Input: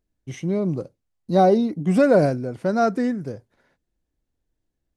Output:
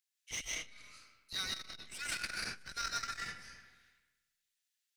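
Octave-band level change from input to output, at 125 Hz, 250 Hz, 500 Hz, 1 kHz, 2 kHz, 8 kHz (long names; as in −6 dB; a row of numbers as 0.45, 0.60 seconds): −31.5 dB, −37.5 dB, −39.5 dB, −21.0 dB, −6.0 dB, can't be measured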